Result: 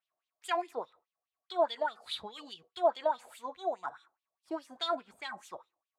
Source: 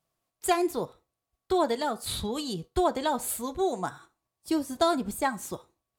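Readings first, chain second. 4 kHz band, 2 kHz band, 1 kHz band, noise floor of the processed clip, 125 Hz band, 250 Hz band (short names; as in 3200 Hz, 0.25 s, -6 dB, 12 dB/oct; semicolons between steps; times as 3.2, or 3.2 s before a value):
-4.0 dB, -5.5 dB, -5.0 dB, under -85 dBFS, under -25 dB, -17.0 dB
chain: wah 4.8 Hz 630–3500 Hz, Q 3.8; gain +3 dB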